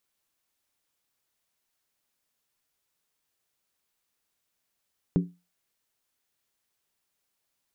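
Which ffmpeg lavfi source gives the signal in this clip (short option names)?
-f lavfi -i "aevalsrc='0.15*pow(10,-3*t/0.27)*sin(2*PI*176*t)+0.075*pow(10,-3*t/0.214)*sin(2*PI*280.5*t)+0.0376*pow(10,-3*t/0.185)*sin(2*PI*375.9*t)+0.0188*pow(10,-3*t/0.178)*sin(2*PI*404.1*t)+0.00944*pow(10,-3*t/0.166)*sin(2*PI*466.9*t)':d=0.63:s=44100"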